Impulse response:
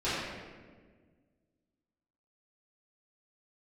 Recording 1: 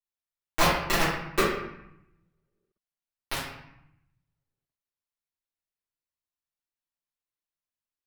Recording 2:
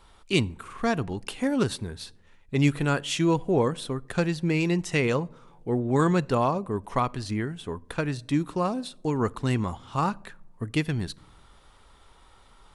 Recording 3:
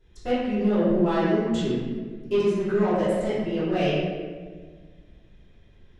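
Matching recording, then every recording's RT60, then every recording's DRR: 3; 0.80, 1.1, 1.6 seconds; −11.5, 20.5, −16.0 decibels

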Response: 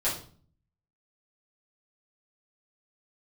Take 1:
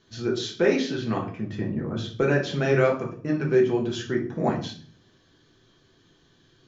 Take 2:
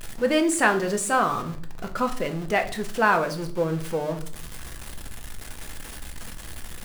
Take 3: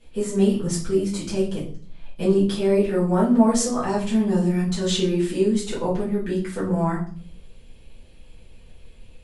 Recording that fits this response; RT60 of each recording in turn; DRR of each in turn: 3; 0.45, 0.45, 0.45 seconds; −2.5, 5.0, −10.0 decibels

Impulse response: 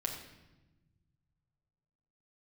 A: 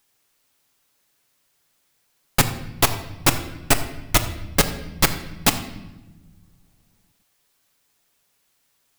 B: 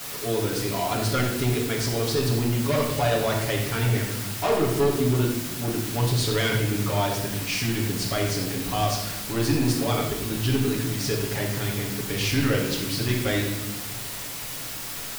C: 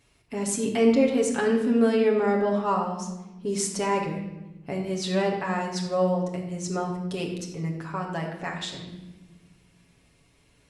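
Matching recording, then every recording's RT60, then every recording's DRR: C; non-exponential decay, 1.1 s, 1.1 s; 6.0, −6.0, −1.0 decibels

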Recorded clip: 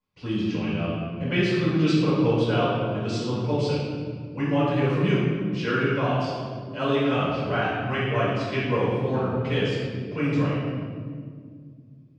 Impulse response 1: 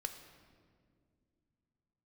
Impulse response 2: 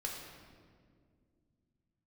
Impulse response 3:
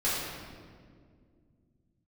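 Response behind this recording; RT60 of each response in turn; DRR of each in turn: 3; 2.1, 2.1, 2.1 seconds; 6.5, −1.5, −10.5 decibels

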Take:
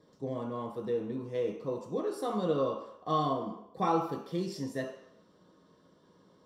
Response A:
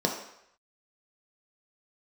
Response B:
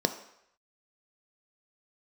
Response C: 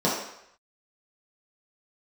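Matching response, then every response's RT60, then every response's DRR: A; 0.75, 0.75, 0.75 seconds; 0.5, 8.0, −7.5 decibels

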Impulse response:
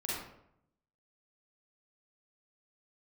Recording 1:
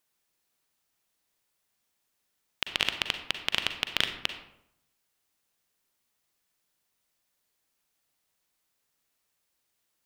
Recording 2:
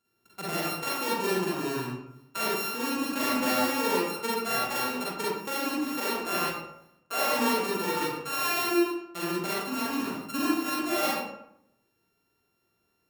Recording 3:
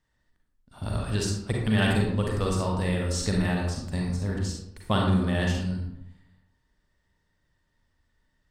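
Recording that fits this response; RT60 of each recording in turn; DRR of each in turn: 2; 0.75, 0.75, 0.75 seconds; 7.0, −7.0, −1.5 decibels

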